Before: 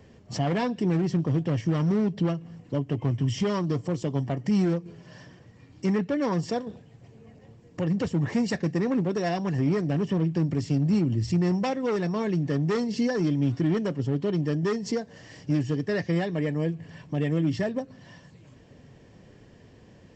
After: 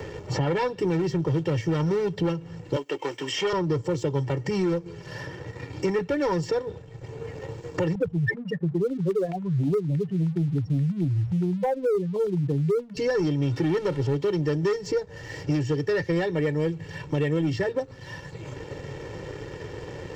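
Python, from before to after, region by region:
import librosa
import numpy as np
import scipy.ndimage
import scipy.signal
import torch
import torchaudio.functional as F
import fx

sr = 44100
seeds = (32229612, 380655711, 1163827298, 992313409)

y = fx.chain(x, sr, fx.highpass(hz=230.0, slope=24),
    fx.tilt_eq(slope=3.5), at=(2.76, 3.53))
y = fx.chain(y, sr, fx.spec_expand(power=3.3),
    fx.quant_float(bits=8),
    fx.filter_held_lowpass(hz=9.5, low_hz=760.0, high_hz=2300.0), at=(7.95, 12.97))
y = fx.chain(y, sr, fx.zero_step(step_db=-38.0),
    fx.lowpass(hz=5500.0, slope=12), at=(13.56, 14.15))
y = y + 0.97 * np.pad(y, (int(2.2 * sr / 1000.0), 0))[:len(y)]
y = fx.leveller(y, sr, passes=1)
y = fx.band_squash(y, sr, depth_pct=70)
y = y * librosa.db_to_amplitude(-3.0)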